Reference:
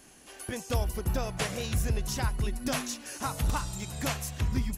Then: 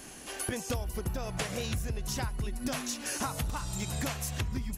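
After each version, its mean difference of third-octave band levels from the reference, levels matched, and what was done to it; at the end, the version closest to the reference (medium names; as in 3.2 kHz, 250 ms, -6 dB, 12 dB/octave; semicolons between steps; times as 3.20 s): 3.5 dB: compression 12:1, threshold -38 dBFS, peak gain reduction 15.5 dB; trim +8 dB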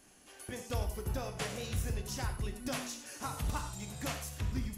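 2.0 dB: gated-style reverb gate 130 ms flat, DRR 5.5 dB; trim -7 dB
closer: second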